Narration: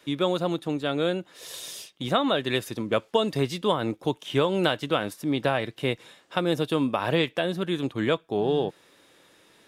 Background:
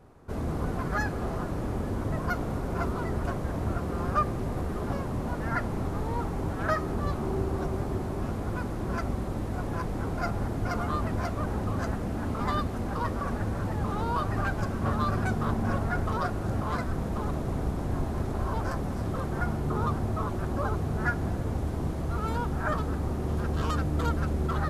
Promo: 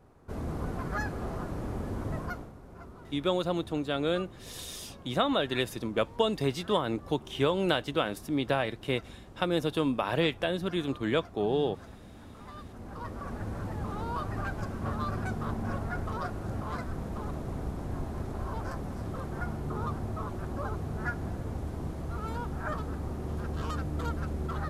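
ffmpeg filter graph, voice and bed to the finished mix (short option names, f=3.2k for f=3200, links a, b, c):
-filter_complex "[0:a]adelay=3050,volume=-3.5dB[a];[1:a]volume=8.5dB,afade=t=out:st=2.16:d=0.36:silence=0.199526,afade=t=in:st=12.53:d=1.02:silence=0.237137[b];[a][b]amix=inputs=2:normalize=0"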